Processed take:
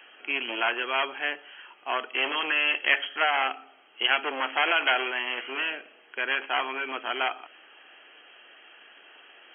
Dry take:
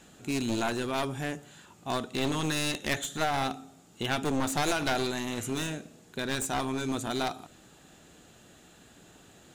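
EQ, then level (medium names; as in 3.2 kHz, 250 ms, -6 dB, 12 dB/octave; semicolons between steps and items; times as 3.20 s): high-pass 350 Hz 24 dB/octave; brick-wall FIR low-pass 3.3 kHz; tilt shelf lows -10 dB, about 1.1 kHz; +5.5 dB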